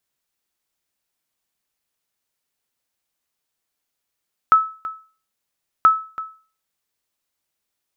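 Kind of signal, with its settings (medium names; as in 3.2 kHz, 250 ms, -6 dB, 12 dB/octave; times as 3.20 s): sonar ping 1.3 kHz, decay 0.38 s, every 1.33 s, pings 2, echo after 0.33 s, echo -16.5 dB -5 dBFS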